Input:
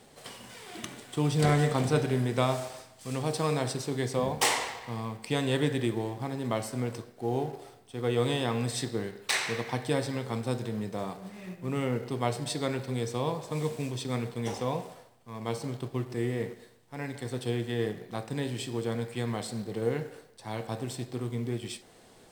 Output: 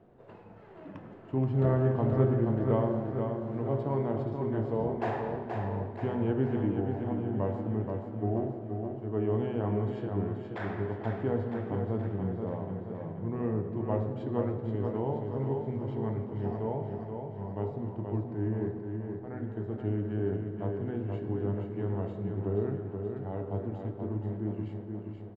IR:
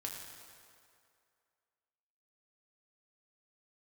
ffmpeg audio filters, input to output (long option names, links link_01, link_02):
-filter_complex "[0:a]lowpass=1000,bandreject=frequency=47.15:width_type=h:width=4,bandreject=frequency=94.3:width_type=h:width=4,bandreject=frequency=141.45:width_type=h:width=4,bandreject=frequency=188.6:width_type=h:width=4,bandreject=frequency=235.75:width_type=h:width=4,bandreject=frequency=282.9:width_type=h:width=4,bandreject=frequency=330.05:width_type=h:width=4,bandreject=frequency=377.2:width_type=h:width=4,bandreject=frequency=424.35:width_type=h:width=4,bandreject=frequency=471.5:width_type=h:width=4,bandreject=frequency=518.65:width_type=h:width=4,bandreject=frequency=565.8:width_type=h:width=4,bandreject=frequency=612.95:width_type=h:width=4,bandreject=frequency=660.1:width_type=h:width=4,bandreject=frequency=707.25:width_type=h:width=4,bandreject=frequency=754.4:width_type=h:width=4,bandreject=frequency=801.55:width_type=h:width=4,bandreject=frequency=848.7:width_type=h:width=4,bandreject=frequency=895.85:width_type=h:width=4,bandreject=frequency=943:width_type=h:width=4,bandreject=frequency=990.15:width_type=h:width=4,bandreject=frequency=1037.3:width_type=h:width=4,bandreject=frequency=1084.45:width_type=h:width=4,bandreject=frequency=1131.6:width_type=h:width=4,bandreject=frequency=1178.75:width_type=h:width=4,bandreject=frequency=1225.9:width_type=h:width=4,bandreject=frequency=1273.05:width_type=h:width=4,asetrate=38808,aresample=44100,aecho=1:1:478|956|1434|1912|2390|2868|3346|3824:0.531|0.303|0.172|0.0983|0.056|0.0319|0.0182|0.0104,asplit=2[link_01][link_02];[1:a]atrim=start_sample=2205,lowpass=4400[link_03];[link_02][link_03]afir=irnorm=-1:irlink=0,volume=-6dB[link_04];[link_01][link_04]amix=inputs=2:normalize=0,volume=-3dB"